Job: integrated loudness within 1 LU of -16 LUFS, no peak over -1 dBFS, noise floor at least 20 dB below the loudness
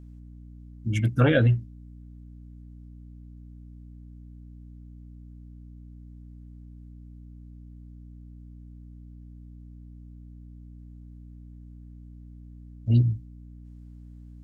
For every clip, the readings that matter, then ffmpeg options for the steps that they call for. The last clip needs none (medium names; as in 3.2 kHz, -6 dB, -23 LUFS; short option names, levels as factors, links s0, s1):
hum 60 Hz; highest harmonic 300 Hz; hum level -42 dBFS; loudness -24.0 LUFS; peak level -8.0 dBFS; loudness target -16.0 LUFS
-> -af "bandreject=f=60:t=h:w=4,bandreject=f=120:t=h:w=4,bandreject=f=180:t=h:w=4,bandreject=f=240:t=h:w=4,bandreject=f=300:t=h:w=4"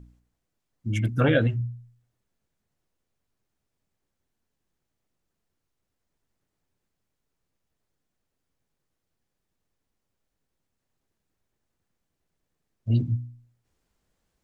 hum not found; loudness -25.5 LUFS; peak level -9.5 dBFS; loudness target -16.0 LUFS
-> -af "volume=2.99,alimiter=limit=0.891:level=0:latency=1"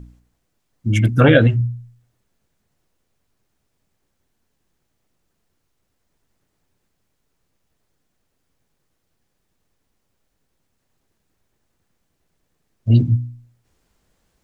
loudness -16.5 LUFS; peak level -1.0 dBFS; noise floor -72 dBFS